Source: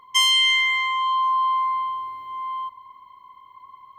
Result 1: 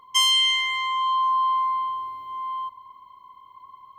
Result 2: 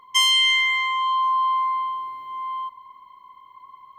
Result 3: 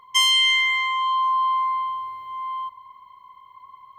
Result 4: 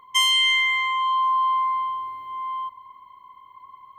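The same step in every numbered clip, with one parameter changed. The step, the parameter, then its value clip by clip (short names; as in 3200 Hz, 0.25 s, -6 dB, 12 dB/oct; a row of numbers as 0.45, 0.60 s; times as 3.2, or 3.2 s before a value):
bell, frequency: 1900, 88, 300, 4900 Hz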